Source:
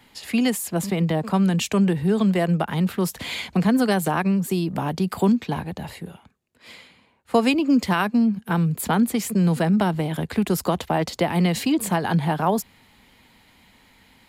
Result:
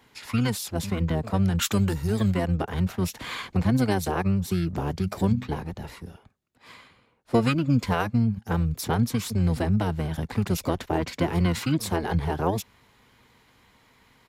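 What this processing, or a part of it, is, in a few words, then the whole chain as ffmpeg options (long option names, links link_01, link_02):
octave pedal: -filter_complex "[0:a]asplit=3[link_01][link_02][link_03];[link_01]afade=type=out:start_time=1.61:duration=0.02[link_04];[link_02]aemphasis=mode=production:type=50fm,afade=type=in:start_time=1.61:duration=0.02,afade=type=out:start_time=2.31:duration=0.02[link_05];[link_03]afade=type=in:start_time=2.31:duration=0.02[link_06];[link_04][link_05][link_06]amix=inputs=3:normalize=0,asettb=1/sr,asplit=3[link_07][link_08][link_09];[link_07]atrim=end=5.004[link_10];[link_08]atrim=start=5:end=5.48,asetpts=PTS-STARTPTS,afade=type=in:duration=0.004:curve=qsin,afade=type=out:start_time=0.476:duration=0.004:curve=qsin,bandreject=frequency=50:width_type=h:width=6,bandreject=frequency=100:width_type=h:width=6,bandreject=frequency=150:width_type=h:width=6,bandreject=frequency=200:width_type=h:width=6,bandreject=frequency=250:width_type=h:width=6,bandreject=frequency=300:width_type=h:width=6[link_11];[link_09]atrim=start=5.476[link_12];[link_10][link_11]acrossfade=duration=0.004:curve1=hsin:curve2=qsin[link_13];[link_13][link_12]acrossfade=duration=0.004:curve1=qsin:curve2=hsin,highpass=64,asettb=1/sr,asplit=3[link_14][link_15][link_16];[link_14]atrim=end=3.784[link_17];[link_15]atrim=start=3.78:end=4.2,asetpts=PTS-STARTPTS,afade=type=in:duration=0.004:curve=qsin,afade=type=out:start_time=0.416:duration=0.004:curve=qsin,asubboost=boost=11.5:cutoff=110[link_18];[link_16]atrim=start=4.196[link_19];[link_17][link_18]acrossfade=duration=0.004:curve1=hsin:curve2=qsin[link_20];[link_20][link_19]acrossfade=duration=0.004:curve1=qsin:curve2=hsin,asplit=2[link_21][link_22];[link_22]asetrate=22050,aresample=44100,atempo=2,volume=0dB[link_23];[link_21][link_23]amix=inputs=2:normalize=0,volume=-6.5dB"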